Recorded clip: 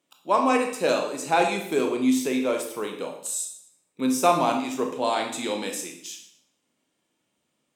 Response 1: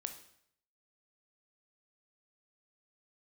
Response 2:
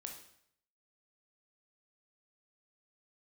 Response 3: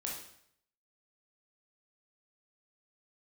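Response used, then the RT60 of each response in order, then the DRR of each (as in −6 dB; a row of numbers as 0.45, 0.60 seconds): 2; 0.65, 0.65, 0.65 seconds; 6.5, 2.0, −2.5 decibels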